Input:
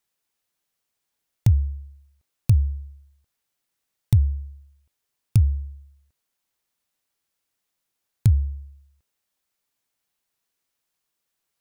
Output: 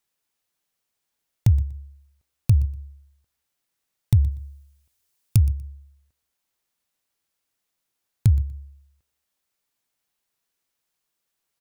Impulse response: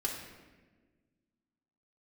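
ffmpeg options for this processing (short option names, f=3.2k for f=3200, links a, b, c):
-filter_complex "[0:a]asettb=1/sr,asplit=3[a][b][c];[a]atrim=end=4.314[d];[b]atrim=start=4.31:end=5.38,asetpts=PTS-STARTPTS,afade=t=in:d=0.004:c=qsin,afade=t=out:st=1.066:d=0.004:c=qsin,highshelf=f=3.7k:g=8[e];[c]atrim=start=5.376[f];[d][e]acrossfade=d=0.004:c1=hsin:c2=qsin[g];[g][f]acrossfade=d=0.004:c1=qsin:c2=hsin,aecho=1:1:121|242:0.112|0.0247"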